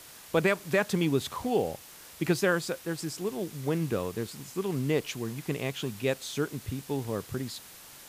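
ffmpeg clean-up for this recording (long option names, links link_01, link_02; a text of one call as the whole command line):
ffmpeg -i in.wav -af "adeclick=threshold=4,afftdn=noise_reduction=25:noise_floor=-49" out.wav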